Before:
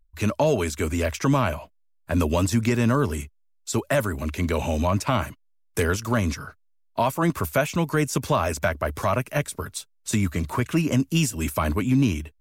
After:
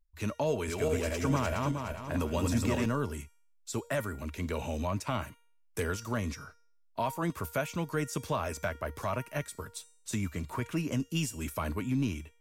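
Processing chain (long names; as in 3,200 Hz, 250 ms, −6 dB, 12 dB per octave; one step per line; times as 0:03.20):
0:00.47–0:02.86: feedback delay that plays each chunk backwards 208 ms, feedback 56%, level −1.5 dB
tuned comb filter 470 Hz, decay 0.54 s, mix 70%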